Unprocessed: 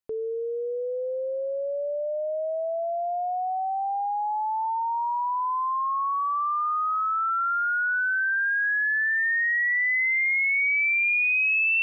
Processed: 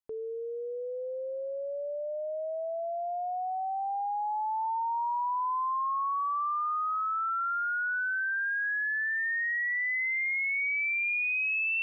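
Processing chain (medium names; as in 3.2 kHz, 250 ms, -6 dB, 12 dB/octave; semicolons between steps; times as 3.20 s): peaking EQ 980 Hz +3.5 dB 0.9 oct; trim -7 dB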